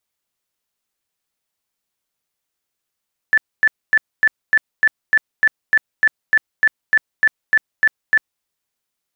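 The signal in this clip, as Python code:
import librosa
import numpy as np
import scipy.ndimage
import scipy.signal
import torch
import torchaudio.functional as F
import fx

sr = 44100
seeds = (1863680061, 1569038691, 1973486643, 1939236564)

y = fx.tone_burst(sr, hz=1750.0, cycles=80, every_s=0.3, bursts=17, level_db=-9.0)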